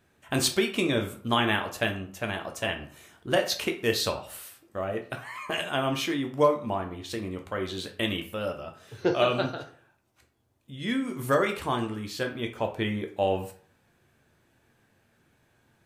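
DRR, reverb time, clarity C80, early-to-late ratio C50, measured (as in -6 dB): 4.0 dB, 0.50 s, 15.0 dB, 10.5 dB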